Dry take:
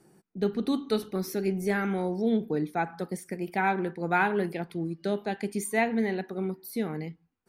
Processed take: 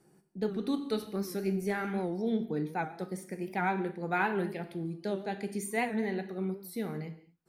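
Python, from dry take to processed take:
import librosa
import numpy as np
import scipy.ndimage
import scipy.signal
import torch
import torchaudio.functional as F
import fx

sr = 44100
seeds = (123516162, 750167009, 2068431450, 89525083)

y = fx.rev_gated(x, sr, seeds[0], gate_ms=260, shape='falling', drr_db=8.5)
y = fx.record_warp(y, sr, rpm=78.0, depth_cents=100.0)
y = y * librosa.db_to_amplitude(-5.0)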